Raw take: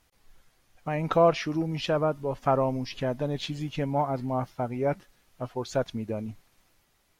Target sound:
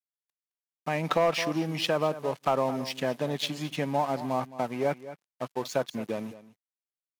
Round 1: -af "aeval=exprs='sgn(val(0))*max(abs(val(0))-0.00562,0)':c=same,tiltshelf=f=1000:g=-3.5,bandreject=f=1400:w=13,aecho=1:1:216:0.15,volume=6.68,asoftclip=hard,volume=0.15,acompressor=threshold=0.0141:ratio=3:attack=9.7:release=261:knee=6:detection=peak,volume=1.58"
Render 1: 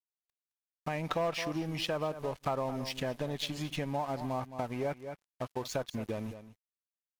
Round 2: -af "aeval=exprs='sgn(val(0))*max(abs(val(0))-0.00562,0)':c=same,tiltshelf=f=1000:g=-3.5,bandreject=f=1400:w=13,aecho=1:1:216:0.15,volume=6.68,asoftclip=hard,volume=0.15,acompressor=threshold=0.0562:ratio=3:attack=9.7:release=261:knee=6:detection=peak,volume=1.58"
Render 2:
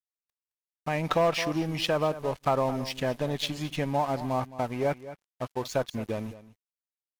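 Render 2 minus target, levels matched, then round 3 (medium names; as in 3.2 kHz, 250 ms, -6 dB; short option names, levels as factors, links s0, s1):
125 Hz band +2.5 dB
-af "aeval=exprs='sgn(val(0))*max(abs(val(0))-0.00562,0)':c=same,highpass=f=140:w=0.5412,highpass=f=140:w=1.3066,tiltshelf=f=1000:g=-3.5,bandreject=f=1400:w=13,aecho=1:1:216:0.15,volume=6.68,asoftclip=hard,volume=0.15,acompressor=threshold=0.0562:ratio=3:attack=9.7:release=261:knee=6:detection=peak,volume=1.58"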